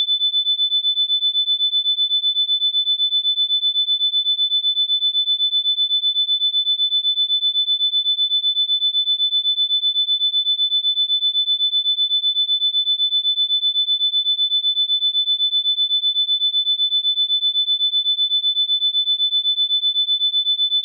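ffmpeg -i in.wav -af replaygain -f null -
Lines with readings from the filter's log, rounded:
track_gain = -5.4 dB
track_peak = 0.162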